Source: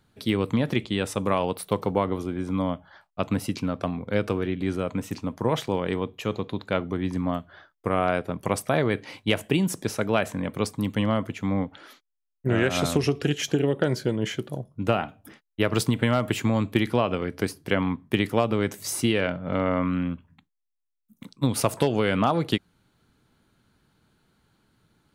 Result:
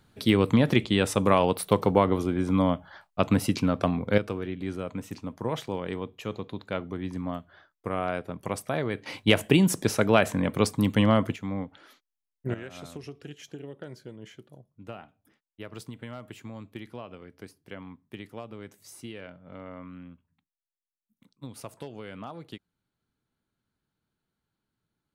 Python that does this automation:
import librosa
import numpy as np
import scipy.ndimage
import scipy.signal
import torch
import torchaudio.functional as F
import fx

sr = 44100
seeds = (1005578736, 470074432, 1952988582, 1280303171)

y = fx.gain(x, sr, db=fx.steps((0.0, 3.0), (4.18, -6.0), (9.06, 3.0), (11.36, -6.5), (12.54, -18.0)))